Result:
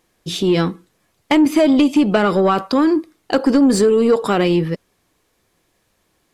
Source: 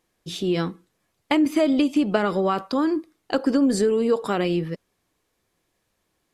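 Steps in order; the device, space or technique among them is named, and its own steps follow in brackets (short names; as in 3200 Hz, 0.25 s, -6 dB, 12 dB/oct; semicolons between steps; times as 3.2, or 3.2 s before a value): saturation between pre-emphasis and de-emphasis (high shelf 4000 Hz +9.5 dB; soft clip -14.5 dBFS, distortion -18 dB; high shelf 4000 Hz -9.5 dB); gain +8.5 dB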